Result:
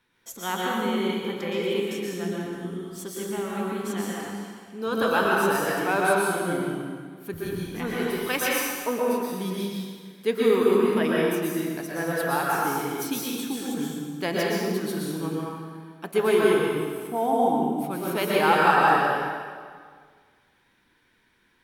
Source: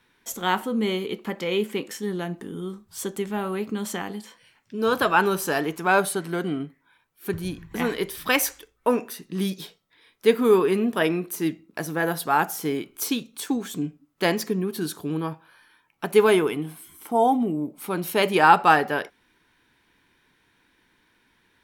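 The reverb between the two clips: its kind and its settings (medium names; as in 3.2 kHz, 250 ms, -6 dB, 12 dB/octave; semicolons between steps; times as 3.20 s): plate-style reverb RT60 1.8 s, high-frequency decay 0.8×, pre-delay 105 ms, DRR -5 dB; trim -7 dB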